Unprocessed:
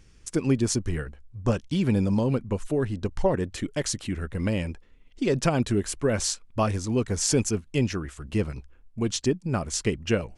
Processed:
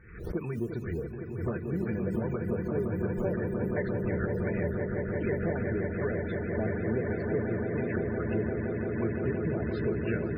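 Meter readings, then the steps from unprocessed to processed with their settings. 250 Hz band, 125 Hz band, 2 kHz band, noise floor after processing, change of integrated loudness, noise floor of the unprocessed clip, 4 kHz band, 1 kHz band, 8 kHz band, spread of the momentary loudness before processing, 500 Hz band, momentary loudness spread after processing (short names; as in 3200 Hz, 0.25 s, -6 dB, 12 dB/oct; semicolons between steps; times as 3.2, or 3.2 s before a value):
-4.5 dB, -4.5 dB, -1.5 dB, -38 dBFS, -4.5 dB, -55 dBFS, under -25 dB, -7.5 dB, under -40 dB, 8 LU, -2.5 dB, 4 LU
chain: nonlinear frequency compression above 2400 Hz 1.5:1; dynamic EQ 4600 Hz, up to -4 dB, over -45 dBFS, Q 2.2; LFO low-pass square 2.7 Hz 500–1800 Hz; in parallel at -9.5 dB: hard clip -20.5 dBFS, distortion -9 dB; on the sum: modulation noise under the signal 21 dB; HPF 55 Hz 6 dB/oct; compressor 4:1, threshold -31 dBFS, peak gain reduction 15.5 dB; notches 50/100/150/200/250/300 Hz; notch comb 270 Hz; on a send: swelling echo 0.172 s, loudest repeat 8, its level -8 dB; on the sum: loudest bins only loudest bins 64; backwards sustainer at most 79 dB/s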